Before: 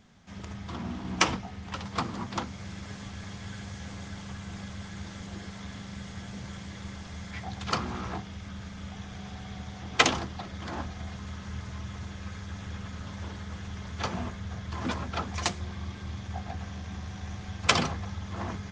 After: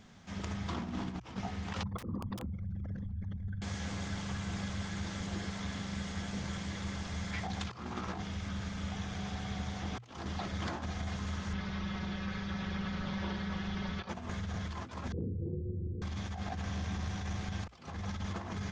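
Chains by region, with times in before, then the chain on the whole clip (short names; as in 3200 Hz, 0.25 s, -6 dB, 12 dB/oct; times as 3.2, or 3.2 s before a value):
1.83–3.62 formant sharpening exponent 3 + bell 520 Hz +8.5 dB 0.26 oct + wrapped overs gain 25 dB
11.53–14.09 LPF 4900 Hz 24 dB/oct + comb 5.3 ms, depth 63%
15.12–16.02 rippled Chebyshev low-pass 510 Hz, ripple 6 dB + doubler 33 ms -4 dB + fast leveller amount 50%
whole clip: negative-ratio compressor -37 dBFS, ratio -0.5; notches 60/120 Hz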